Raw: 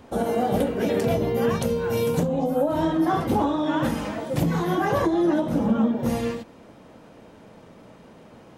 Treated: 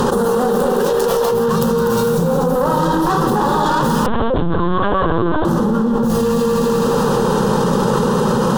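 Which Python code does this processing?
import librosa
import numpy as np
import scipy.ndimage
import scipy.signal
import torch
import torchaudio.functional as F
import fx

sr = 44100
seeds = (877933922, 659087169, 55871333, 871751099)

y = fx.tracing_dist(x, sr, depth_ms=0.4)
y = fx.highpass(y, sr, hz=fx.line((0.42, 160.0), (1.31, 590.0)), slope=24, at=(0.42, 1.31), fade=0.02)
y = fx.clip_asym(y, sr, top_db=-26.0, bottom_db=-16.5)
y = fx.fixed_phaser(y, sr, hz=440.0, stages=8)
y = fx.echo_heads(y, sr, ms=82, heads='second and third', feedback_pct=47, wet_db=-9.0)
y = fx.lpc_vocoder(y, sr, seeds[0], excitation='pitch_kept', order=10, at=(4.06, 5.45))
y = fx.env_flatten(y, sr, amount_pct=100)
y = F.gain(torch.from_numpy(y), 6.0).numpy()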